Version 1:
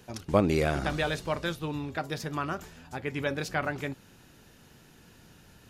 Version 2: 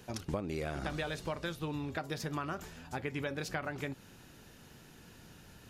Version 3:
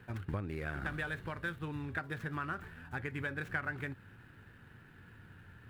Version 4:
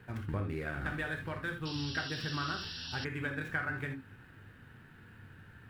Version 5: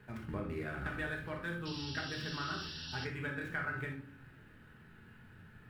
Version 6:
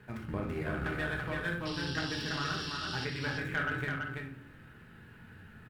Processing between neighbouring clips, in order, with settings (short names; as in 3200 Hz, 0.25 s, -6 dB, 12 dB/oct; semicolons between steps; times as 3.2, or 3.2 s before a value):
compressor 10:1, threshold -33 dBFS, peak gain reduction 16 dB
median filter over 9 samples; fifteen-band EQ 100 Hz +11 dB, 630 Hz -5 dB, 1600 Hz +11 dB, 6300 Hz -7 dB; gain -4 dB
non-linear reverb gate 0.1 s flat, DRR 3.5 dB; painted sound noise, 1.65–3.05, 2600–5700 Hz -44 dBFS
shoebox room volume 510 m³, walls furnished, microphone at 1.4 m; gain -4 dB
added harmonics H 4 -19 dB, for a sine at -24.5 dBFS; on a send: echo 0.333 s -3.5 dB; on the sum: gain +3 dB